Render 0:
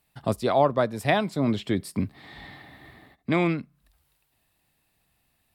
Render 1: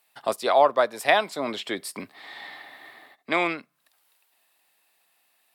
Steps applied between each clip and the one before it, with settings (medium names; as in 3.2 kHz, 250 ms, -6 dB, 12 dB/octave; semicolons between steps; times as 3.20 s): high-pass 590 Hz 12 dB/octave; trim +5 dB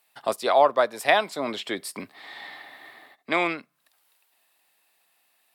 no audible change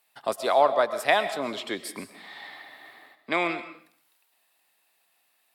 reverberation RT60 0.55 s, pre-delay 85 ms, DRR 11.5 dB; trim -2 dB